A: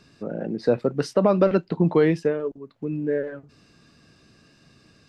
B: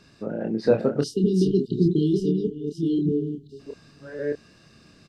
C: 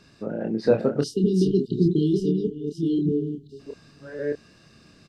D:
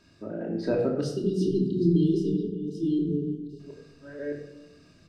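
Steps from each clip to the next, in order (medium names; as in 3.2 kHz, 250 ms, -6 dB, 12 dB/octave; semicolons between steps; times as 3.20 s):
chunks repeated in reverse 618 ms, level -4 dB; spectral selection erased 1.00–3.59 s, 440–2800 Hz; doubling 27 ms -5.5 dB
no audible change
simulated room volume 2800 m³, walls furnished, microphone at 2.8 m; trim -7 dB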